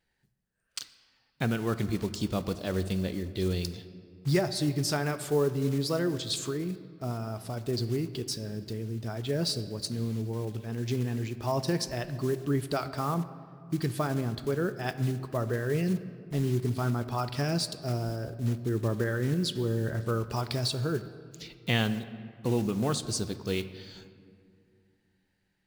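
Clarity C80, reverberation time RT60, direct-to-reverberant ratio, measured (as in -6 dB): 14.0 dB, 2.3 s, 11.5 dB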